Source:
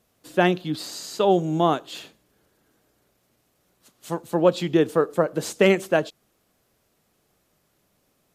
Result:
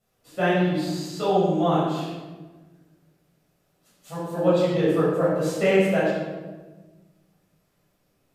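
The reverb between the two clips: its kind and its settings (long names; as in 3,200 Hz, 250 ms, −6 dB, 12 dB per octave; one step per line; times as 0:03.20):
rectangular room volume 920 cubic metres, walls mixed, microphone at 6.7 metres
level −14 dB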